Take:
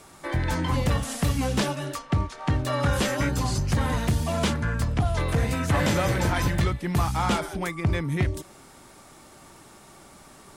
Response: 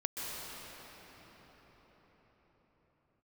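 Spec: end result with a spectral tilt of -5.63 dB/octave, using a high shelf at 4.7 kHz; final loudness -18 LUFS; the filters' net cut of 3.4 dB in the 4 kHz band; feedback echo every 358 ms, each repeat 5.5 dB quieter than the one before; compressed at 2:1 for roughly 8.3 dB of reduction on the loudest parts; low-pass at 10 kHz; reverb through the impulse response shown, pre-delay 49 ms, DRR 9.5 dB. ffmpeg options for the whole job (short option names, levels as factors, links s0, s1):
-filter_complex "[0:a]lowpass=10000,equalizer=f=4000:t=o:g=-7.5,highshelf=f=4700:g=6,acompressor=threshold=0.02:ratio=2,aecho=1:1:358|716|1074|1432|1790|2148|2506:0.531|0.281|0.149|0.079|0.0419|0.0222|0.0118,asplit=2[s0][s1];[1:a]atrim=start_sample=2205,adelay=49[s2];[s1][s2]afir=irnorm=-1:irlink=0,volume=0.2[s3];[s0][s3]amix=inputs=2:normalize=0,volume=4.47"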